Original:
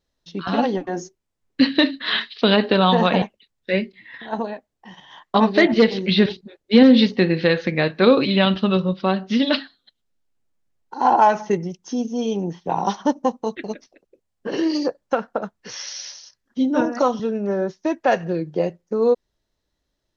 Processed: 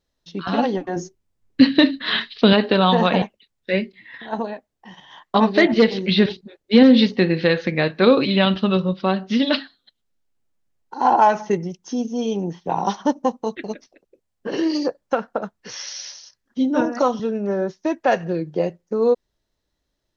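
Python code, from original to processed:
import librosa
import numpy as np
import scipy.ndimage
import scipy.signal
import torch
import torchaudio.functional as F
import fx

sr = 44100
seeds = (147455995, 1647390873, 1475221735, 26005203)

y = fx.low_shelf(x, sr, hz=230.0, db=9.5, at=(0.96, 2.53))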